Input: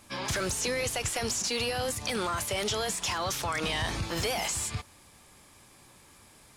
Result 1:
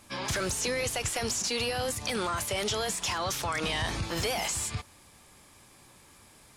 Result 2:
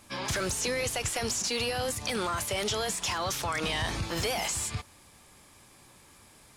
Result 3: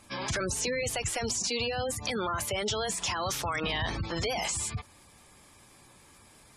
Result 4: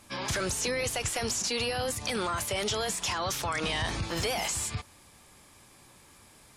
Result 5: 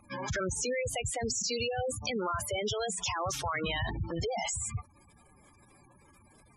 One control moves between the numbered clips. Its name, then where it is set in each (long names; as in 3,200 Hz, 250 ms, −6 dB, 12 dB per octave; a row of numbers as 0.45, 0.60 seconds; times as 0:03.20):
gate on every frequency bin, under each frame's peak: −45, −60, −20, −35, −10 decibels